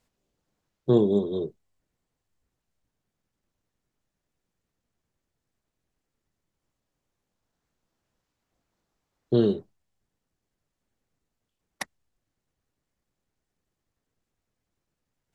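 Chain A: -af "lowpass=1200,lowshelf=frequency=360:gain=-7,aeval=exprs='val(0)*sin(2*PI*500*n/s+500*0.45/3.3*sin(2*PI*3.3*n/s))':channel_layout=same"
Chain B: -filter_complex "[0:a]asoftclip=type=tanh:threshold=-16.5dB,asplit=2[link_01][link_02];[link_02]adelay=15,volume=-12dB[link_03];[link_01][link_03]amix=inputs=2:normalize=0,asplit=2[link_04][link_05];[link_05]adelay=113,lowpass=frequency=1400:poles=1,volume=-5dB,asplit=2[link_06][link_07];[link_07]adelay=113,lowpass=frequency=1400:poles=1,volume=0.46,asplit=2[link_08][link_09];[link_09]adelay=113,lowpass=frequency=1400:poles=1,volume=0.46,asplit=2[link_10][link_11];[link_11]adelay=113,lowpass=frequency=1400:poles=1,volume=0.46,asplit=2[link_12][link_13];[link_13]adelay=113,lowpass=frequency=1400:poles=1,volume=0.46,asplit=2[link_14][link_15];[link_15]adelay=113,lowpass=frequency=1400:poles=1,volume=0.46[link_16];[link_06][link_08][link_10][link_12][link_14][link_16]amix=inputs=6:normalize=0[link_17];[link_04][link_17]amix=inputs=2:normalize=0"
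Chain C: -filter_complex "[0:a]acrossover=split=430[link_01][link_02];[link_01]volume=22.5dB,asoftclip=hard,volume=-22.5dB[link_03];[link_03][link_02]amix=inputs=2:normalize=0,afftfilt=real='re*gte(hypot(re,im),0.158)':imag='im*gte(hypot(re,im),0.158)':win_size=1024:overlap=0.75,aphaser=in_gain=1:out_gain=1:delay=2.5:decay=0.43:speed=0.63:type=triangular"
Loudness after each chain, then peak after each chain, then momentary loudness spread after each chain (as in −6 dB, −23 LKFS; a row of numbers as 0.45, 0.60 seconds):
−32.0, −27.0, −26.5 LKFS; −13.5, −13.5, −11.5 dBFS; 23, 17, 13 LU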